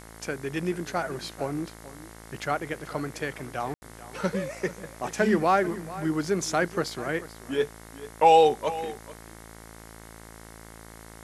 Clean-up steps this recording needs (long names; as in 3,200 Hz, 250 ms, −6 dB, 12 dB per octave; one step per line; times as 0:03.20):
hum removal 55.4 Hz, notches 40
ambience match 0:03.74–0:03.82
broadband denoise 25 dB, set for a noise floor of −47 dBFS
echo removal 438 ms −16.5 dB